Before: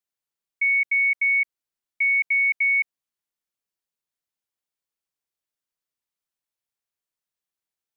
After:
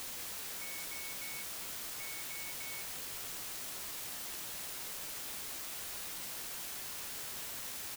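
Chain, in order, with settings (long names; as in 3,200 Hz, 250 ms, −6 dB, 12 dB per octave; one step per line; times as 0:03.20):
brickwall limiter −27 dBFS, peak gain reduction 10 dB
formant resonators in series a
bit-depth reduction 10 bits, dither triangular
double-tracking delay 16 ms −11 dB
level +17 dB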